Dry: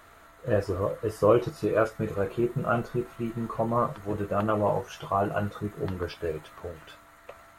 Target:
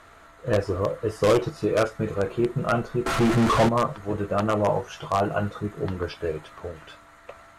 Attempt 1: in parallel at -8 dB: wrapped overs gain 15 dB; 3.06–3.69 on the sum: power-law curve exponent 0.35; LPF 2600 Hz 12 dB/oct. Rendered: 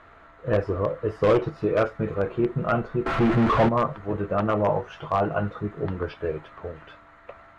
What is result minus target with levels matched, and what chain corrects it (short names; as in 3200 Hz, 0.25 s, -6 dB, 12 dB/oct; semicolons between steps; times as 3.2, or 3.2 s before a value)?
8000 Hz band -16.5 dB
in parallel at -8 dB: wrapped overs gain 15 dB; 3.06–3.69 on the sum: power-law curve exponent 0.35; LPF 8800 Hz 12 dB/oct